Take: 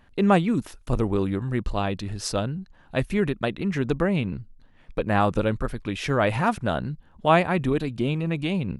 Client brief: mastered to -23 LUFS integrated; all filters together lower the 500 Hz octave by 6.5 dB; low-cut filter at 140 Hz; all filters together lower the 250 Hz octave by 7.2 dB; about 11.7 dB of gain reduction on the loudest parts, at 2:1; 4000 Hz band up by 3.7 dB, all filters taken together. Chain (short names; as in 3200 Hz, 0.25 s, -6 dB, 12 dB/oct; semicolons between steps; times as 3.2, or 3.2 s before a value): HPF 140 Hz; bell 250 Hz -7.5 dB; bell 500 Hz -6.5 dB; bell 4000 Hz +5 dB; compressor 2:1, threshold -38 dBFS; gain +14 dB